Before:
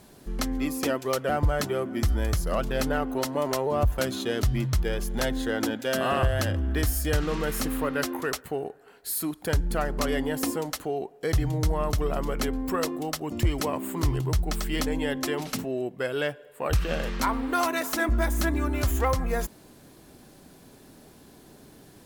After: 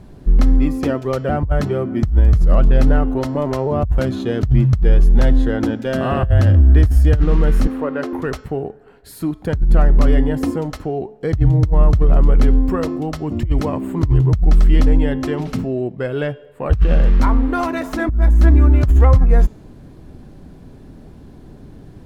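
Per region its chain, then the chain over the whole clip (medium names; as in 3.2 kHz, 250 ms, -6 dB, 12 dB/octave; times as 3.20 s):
7.67–8.13 s: high-pass 410 Hz + tilt EQ -2.5 dB/octave
whole clip: RIAA curve playback; de-hum 215.5 Hz, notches 35; compressor with a negative ratio -11 dBFS, ratio -0.5; trim +2 dB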